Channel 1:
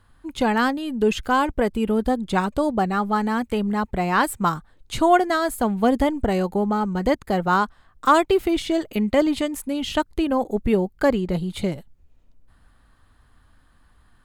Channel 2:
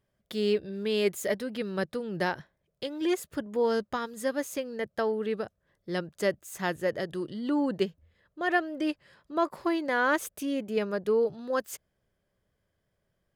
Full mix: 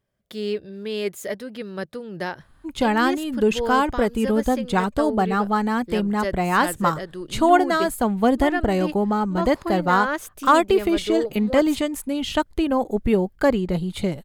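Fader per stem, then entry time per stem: +0.5, 0.0 dB; 2.40, 0.00 s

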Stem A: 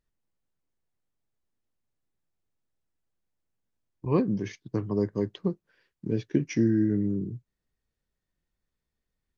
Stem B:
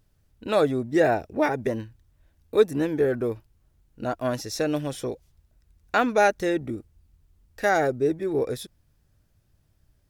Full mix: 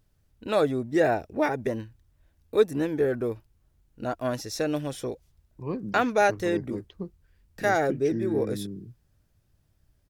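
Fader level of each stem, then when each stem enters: -8.0, -2.0 dB; 1.55, 0.00 s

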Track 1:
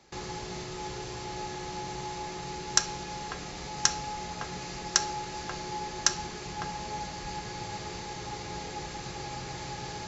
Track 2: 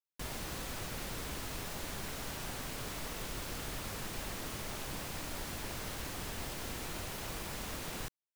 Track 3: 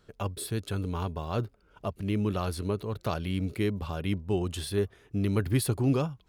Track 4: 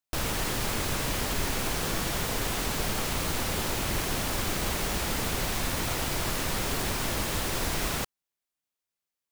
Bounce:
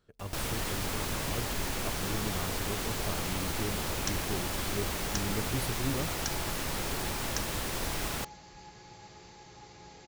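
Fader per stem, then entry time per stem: -13.0, -6.0, -9.0, -4.5 dB; 1.30, 0.00, 0.00, 0.20 s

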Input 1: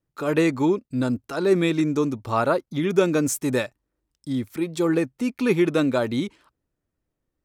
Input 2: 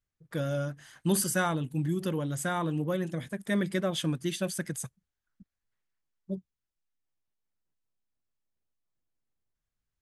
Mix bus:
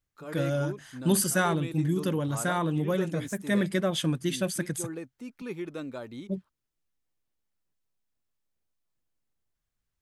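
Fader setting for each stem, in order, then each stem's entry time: -16.5, +2.5 dB; 0.00, 0.00 s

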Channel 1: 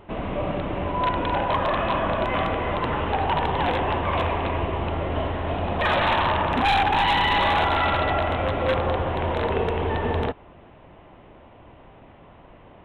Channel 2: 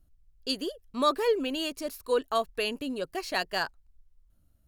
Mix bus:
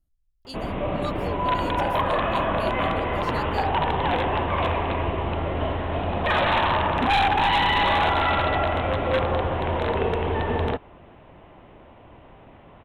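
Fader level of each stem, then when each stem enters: 0.0, -10.0 dB; 0.45, 0.00 s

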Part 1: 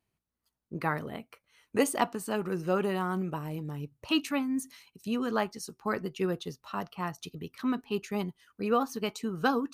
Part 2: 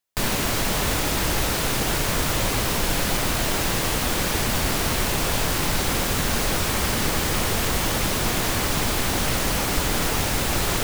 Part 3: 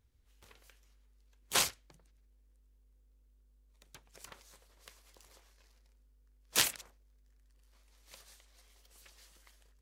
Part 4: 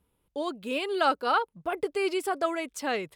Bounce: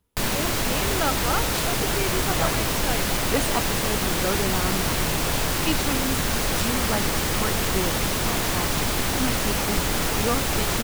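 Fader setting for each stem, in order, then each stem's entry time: +0.5, -1.0, -5.5, -2.0 dB; 1.55, 0.00, 0.00, 0.00 s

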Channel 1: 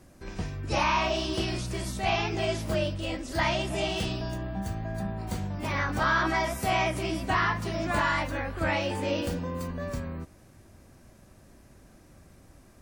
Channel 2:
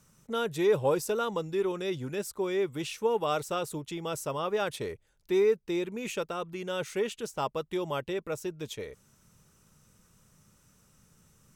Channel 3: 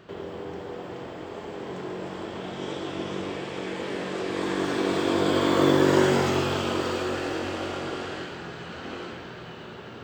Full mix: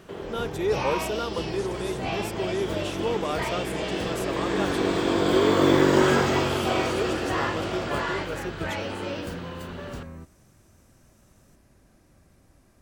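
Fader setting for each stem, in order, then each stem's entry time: -4.5, -1.0, +0.5 dB; 0.00, 0.00, 0.00 s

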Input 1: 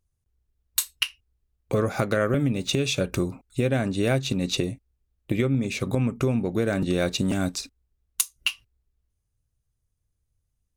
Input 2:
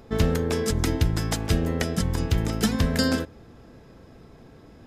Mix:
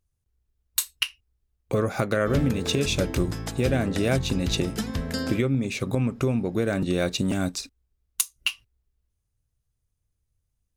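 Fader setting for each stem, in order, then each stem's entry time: -0.5, -6.5 dB; 0.00, 2.15 s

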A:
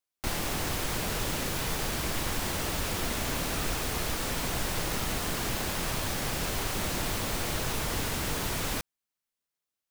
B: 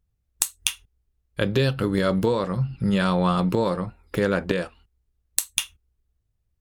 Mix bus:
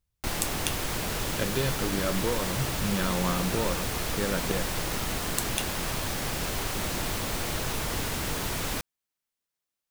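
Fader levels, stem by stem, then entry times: +0.5, -8.0 dB; 0.00, 0.00 s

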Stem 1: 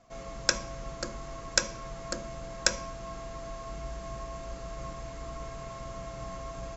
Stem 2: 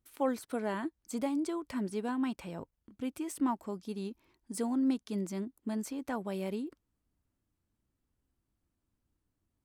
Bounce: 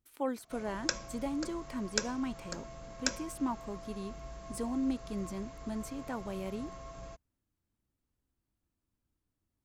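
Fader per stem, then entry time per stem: -7.0, -3.0 dB; 0.40, 0.00 s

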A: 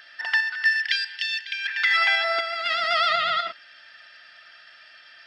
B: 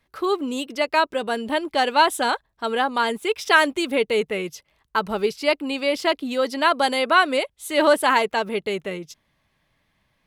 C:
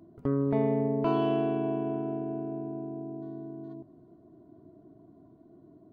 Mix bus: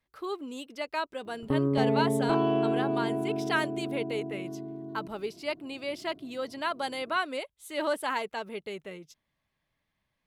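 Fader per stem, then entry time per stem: off, -12.5 dB, +1.0 dB; off, 0.00 s, 1.25 s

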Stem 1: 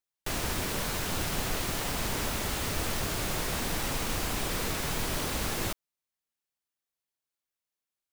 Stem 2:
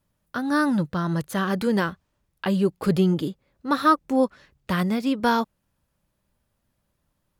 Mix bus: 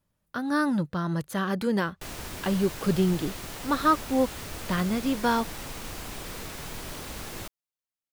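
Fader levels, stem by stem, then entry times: -6.5, -3.5 dB; 1.75, 0.00 s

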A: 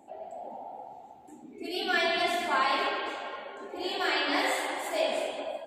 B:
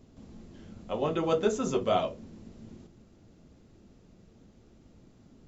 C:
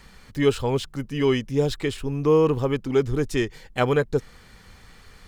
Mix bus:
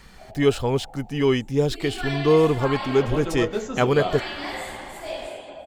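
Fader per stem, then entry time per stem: -4.0, -1.0, +1.0 dB; 0.10, 2.10, 0.00 s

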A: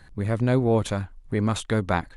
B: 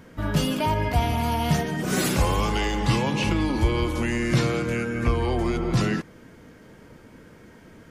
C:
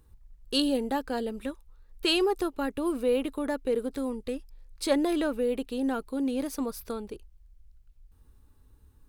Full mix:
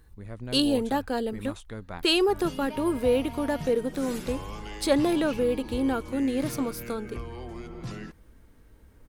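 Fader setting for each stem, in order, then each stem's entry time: -15.5, -15.0, +2.5 dB; 0.00, 2.10, 0.00 s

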